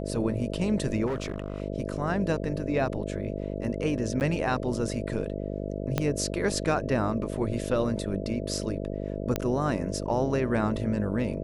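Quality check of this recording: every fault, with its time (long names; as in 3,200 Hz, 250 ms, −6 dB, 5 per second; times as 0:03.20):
mains buzz 50 Hz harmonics 13 −33 dBFS
0:01.06–0:01.62: clipping −26 dBFS
0:04.20–0:04.21: drop-out 9.6 ms
0:05.98: click −11 dBFS
0:09.36: click −12 dBFS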